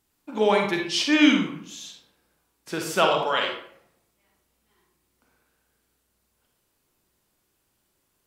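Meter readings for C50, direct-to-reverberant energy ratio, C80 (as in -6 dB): 3.0 dB, 1.0 dB, 7.5 dB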